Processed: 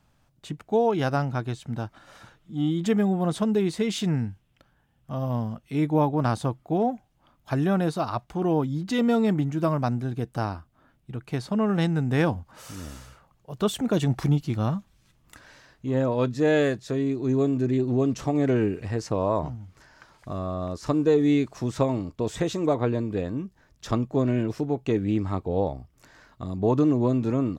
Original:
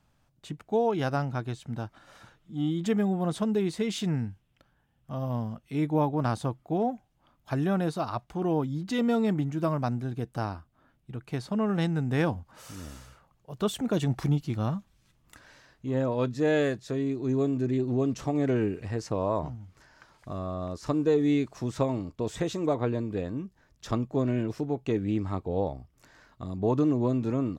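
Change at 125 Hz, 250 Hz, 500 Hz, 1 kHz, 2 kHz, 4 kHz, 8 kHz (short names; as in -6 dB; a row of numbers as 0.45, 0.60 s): +3.5, +3.5, +3.5, +3.5, +3.5, +3.5, +3.5 dB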